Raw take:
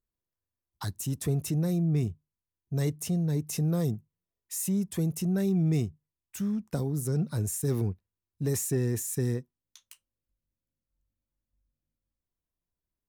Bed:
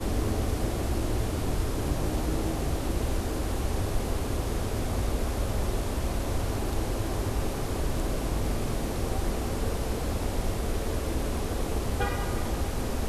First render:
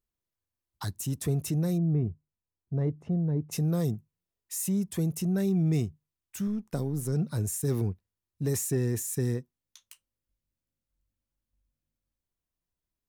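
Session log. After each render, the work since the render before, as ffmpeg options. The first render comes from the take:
ffmpeg -i in.wav -filter_complex "[0:a]asplit=3[link_01][link_02][link_03];[link_01]afade=type=out:start_time=1.77:duration=0.02[link_04];[link_02]lowpass=1100,afade=type=in:start_time=1.77:duration=0.02,afade=type=out:start_time=3.51:duration=0.02[link_05];[link_03]afade=type=in:start_time=3.51:duration=0.02[link_06];[link_04][link_05][link_06]amix=inputs=3:normalize=0,asettb=1/sr,asplit=3[link_07][link_08][link_09];[link_07]atrim=end=6.474[link_10];[link_08]atrim=start=6.47:end=7.13,asetpts=PTS-STARTPTS,afade=type=in:duration=0.004:curve=qsin,afade=type=out:start_time=0.656:duration=0.004:curve=qsin,aeval=exprs='if(lt(val(0),0),0.708*val(0),val(0))':channel_layout=same[link_11];[link_09]atrim=start=7.126[link_12];[link_10][link_11]acrossfade=duration=0.004:curve1=hsin:curve2=qsin[link_13];[link_13][link_12]acrossfade=duration=0.004:curve1=qsin:curve2=hsin" out.wav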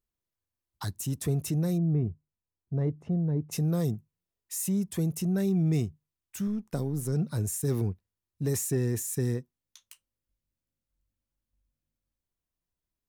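ffmpeg -i in.wav -af anull out.wav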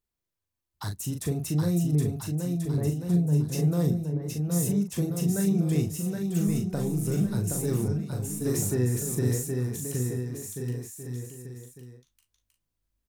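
ffmpeg -i in.wav -filter_complex "[0:a]asplit=2[link_01][link_02];[link_02]adelay=40,volume=-5.5dB[link_03];[link_01][link_03]amix=inputs=2:normalize=0,aecho=1:1:770|1386|1879|2273|2588:0.631|0.398|0.251|0.158|0.1" out.wav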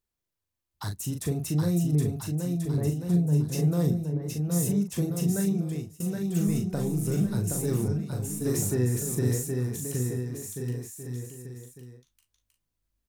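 ffmpeg -i in.wav -filter_complex "[0:a]asplit=2[link_01][link_02];[link_01]atrim=end=6,asetpts=PTS-STARTPTS,afade=type=out:start_time=5.36:duration=0.64:silence=0.0668344[link_03];[link_02]atrim=start=6,asetpts=PTS-STARTPTS,afade=type=in:duration=0.004:curve=hsin:silence=0.0668344[link_04];[link_03][link_04]concat=n=2:v=0:a=1" out.wav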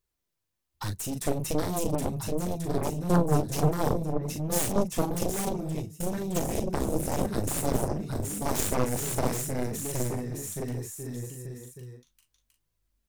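ffmpeg -i in.wav -af "flanger=delay=1.8:depth=4.6:regen=-38:speed=1.1:shape=sinusoidal,aeval=exprs='0.15*(cos(1*acos(clip(val(0)/0.15,-1,1)))-cos(1*PI/2))+0.0335*(cos(6*acos(clip(val(0)/0.15,-1,1)))-cos(6*PI/2))+0.0668*(cos(7*acos(clip(val(0)/0.15,-1,1)))-cos(7*PI/2))':channel_layout=same" out.wav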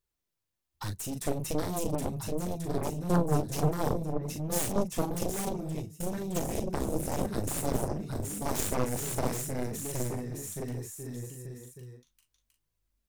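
ffmpeg -i in.wav -af "volume=-3dB" out.wav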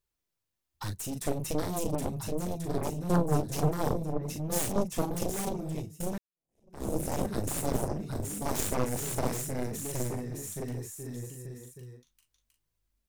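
ffmpeg -i in.wav -filter_complex "[0:a]asplit=2[link_01][link_02];[link_01]atrim=end=6.18,asetpts=PTS-STARTPTS,afade=type=out:start_time=6.176:duration=0.004:curve=hsin[link_03];[link_02]atrim=start=6.18,asetpts=PTS-STARTPTS,afade=type=in:duration=0.68:curve=exp[link_04];[link_03][link_04]concat=n=2:v=0:a=1" out.wav

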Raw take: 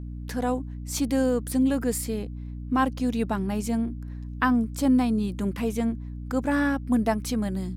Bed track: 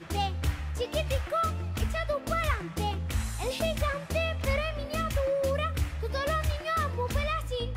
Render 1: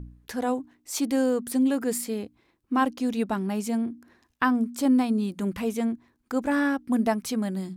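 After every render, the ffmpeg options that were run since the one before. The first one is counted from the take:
ffmpeg -i in.wav -af "bandreject=frequency=60:width_type=h:width=4,bandreject=frequency=120:width_type=h:width=4,bandreject=frequency=180:width_type=h:width=4,bandreject=frequency=240:width_type=h:width=4,bandreject=frequency=300:width_type=h:width=4" out.wav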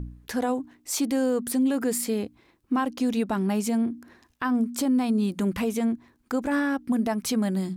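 ffmpeg -i in.wav -filter_complex "[0:a]asplit=2[link_01][link_02];[link_02]acompressor=threshold=-30dB:ratio=6,volume=-1dB[link_03];[link_01][link_03]amix=inputs=2:normalize=0,alimiter=limit=-17dB:level=0:latency=1:release=73" out.wav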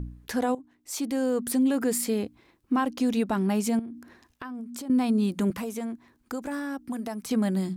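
ffmpeg -i in.wav -filter_complex "[0:a]asettb=1/sr,asplit=3[link_01][link_02][link_03];[link_01]atrim=end=3.794[link_04];[link_02]atrim=start=3.79:end=4.9,asetpts=PTS-STARTPTS,afade=type=in:duration=0.004:curve=qsin,afade=type=out:start_time=1.106:duration=0.004:curve=qsin,acompressor=threshold=-35dB:ratio=6:attack=3.2:release=140:knee=1:detection=peak[link_05];[link_03]atrim=start=4.896[link_06];[link_04][link_05]acrossfade=duration=0.004:curve1=hsin:curve2=qsin[link_07];[link_07][link_06]acrossfade=duration=0.004:curve1=qsin:curve2=hsin,asettb=1/sr,asplit=3[link_08][link_09][link_10];[link_08]atrim=end=5.504[link_11];[link_09]atrim=start=5.5:end=7.31,asetpts=PTS-STARTPTS,afade=type=in:duration=0.004:curve=qsin,afade=type=out:start_time=1.806:duration=0.004:curve=qsin,acrossover=split=150|590|1900|4500[link_12][link_13][link_14][link_15][link_16];[link_12]acompressor=threshold=-54dB:ratio=3[link_17];[link_13]acompressor=threshold=-35dB:ratio=3[link_18];[link_14]acompressor=threshold=-40dB:ratio=3[link_19];[link_15]acompressor=threshold=-56dB:ratio=3[link_20];[link_16]acompressor=threshold=-42dB:ratio=3[link_21];[link_17][link_18][link_19][link_20][link_21]amix=inputs=5:normalize=0[link_22];[link_10]atrim=start=7.306[link_23];[link_11][link_22]acrossfade=duration=0.004:curve1=hsin:curve2=qsin[link_24];[link_24][link_23]acrossfade=duration=0.004:curve1=qsin:curve2=hsin,asplit=2[link_25][link_26];[link_25]atrim=end=0.55,asetpts=PTS-STARTPTS,afade=type=out:start_time=0.546:duration=0.004:curve=hsin:silence=0.188365[link_27];[link_26]atrim=start=0.55,asetpts=PTS-STARTPTS,afade=type=in:duration=0.95:silence=0.188365[link_28];[link_27][link_28]concat=n=2:v=0:a=1" out.wav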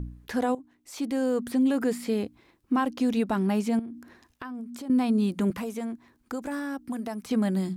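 ffmpeg -i in.wav -filter_complex "[0:a]acrossover=split=4000[link_01][link_02];[link_02]acompressor=threshold=-44dB:ratio=4:attack=1:release=60[link_03];[link_01][link_03]amix=inputs=2:normalize=0" out.wav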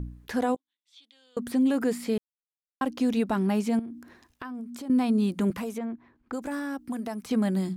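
ffmpeg -i in.wav -filter_complex "[0:a]asettb=1/sr,asplit=3[link_01][link_02][link_03];[link_01]atrim=end=0.564[link_04];[link_02]atrim=start=0.56:end=1.37,asetpts=PTS-STARTPTS,afade=type=in:duration=0.004:curve=qsin,afade=type=out:start_time=0.806:duration=0.004:curve=qsin,bandpass=frequency=3500:width_type=q:width=10[link_05];[link_03]atrim=start=1.366[link_06];[link_04][link_05]acrossfade=duration=0.004:curve1=hsin:curve2=qsin[link_07];[link_07][link_06]acrossfade=duration=0.004:curve1=qsin:curve2=hsin,asettb=1/sr,asplit=3[link_08][link_09][link_10];[link_08]atrim=end=5.784[link_11];[link_09]atrim=start=5.78:end=6.33,asetpts=PTS-STARTPTS,afade=type=in:duration=0.004:curve=qsin,afade=type=out:start_time=0.546:duration=0.004:curve=qsin,lowpass=2400[link_12];[link_10]atrim=start=6.326[link_13];[link_11][link_12]acrossfade=duration=0.004:curve1=hsin:curve2=qsin[link_14];[link_14][link_13]acrossfade=duration=0.004:curve1=qsin:curve2=hsin,asplit=3[link_15][link_16][link_17];[link_15]atrim=end=2.18,asetpts=PTS-STARTPTS,afade=type=out:start_time=2.176:duration=0.004:curve=hsin[link_18];[link_16]atrim=start=2.18:end=2.81,asetpts=PTS-STARTPTS,volume=0[link_19];[link_17]atrim=start=2.81,asetpts=PTS-STARTPTS,afade=type=in:duration=0.004:curve=hsin[link_20];[link_18][link_19][link_20]concat=n=3:v=0:a=1" out.wav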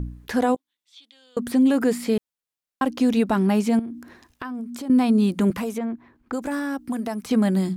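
ffmpeg -i in.wav -af "volume=5.5dB" out.wav

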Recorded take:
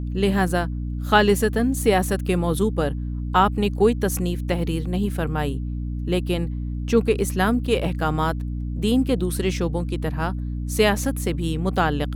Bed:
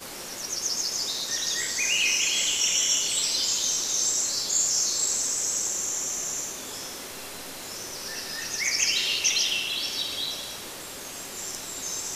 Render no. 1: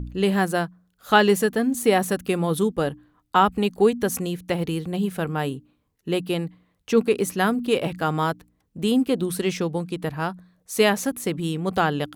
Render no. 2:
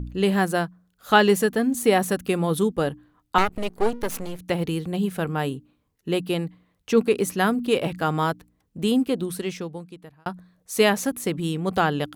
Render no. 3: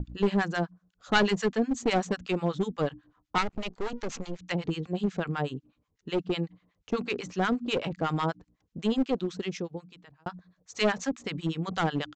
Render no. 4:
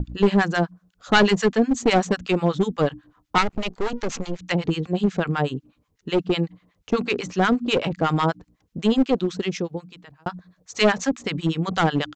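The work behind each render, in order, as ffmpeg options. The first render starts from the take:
ffmpeg -i in.wav -af "bandreject=frequency=60:width_type=h:width=4,bandreject=frequency=120:width_type=h:width=4,bandreject=frequency=180:width_type=h:width=4,bandreject=frequency=240:width_type=h:width=4,bandreject=frequency=300:width_type=h:width=4" out.wav
ffmpeg -i in.wav -filter_complex "[0:a]asettb=1/sr,asplit=3[link_01][link_02][link_03];[link_01]atrim=end=3.384[link_04];[link_02]atrim=start=3.38:end=4.39,asetpts=PTS-STARTPTS,afade=type=in:duration=0.004:curve=qsin,afade=type=out:start_time=1.006:duration=0.004:curve=qsin,aeval=exprs='max(val(0),0)':channel_layout=same[link_05];[link_03]atrim=start=4.386[link_06];[link_04][link_05]acrossfade=duration=0.004:curve1=hsin:curve2=qsin[link_07];[link_07][link_06]acrossfade=duration=0.004:curve1=qsin:curve2=hsin,asplit=2[link_08][link_09];[link_08]atrim=end=10.26,asetpts=PTS-STARTPTS,afade=type=out:start_time=8.85:duration=1.41[link_10];[link_09]atrim=start=10.26,asetpts=PTS-STARTPTS,afade=type=in:duration=0.004:curve=hsin[link_11];[link_10][link_11]concat=n=2:v=0:a=1" out.wav
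ffmpeg -i in.wav -filter_complex "[0:a]acrossover=split=880[link_01][link_02];[link_01]aeval=exprs='val(0)*(1-1/2+1/2*cos(2*PI*8.1*n/s))':channel_layout=same[link_03];[link_02]aeval=exprs='val(0)*(1-1/2-1/2*cos(2*PI*8.1*n/s))':channel_layout=same[link_04];[link_03][link_04]amix=inputs=2:normalize=0,aresample=16000,aeval=exprs='clip(val(0),-1,0.0596)':channel_layout=same,aresample=44100" out.wav
ffmpeg -i in.wav -af "volume=7.5dB,alimiter=limit=-2dB:level=0:latency=1" out.wav

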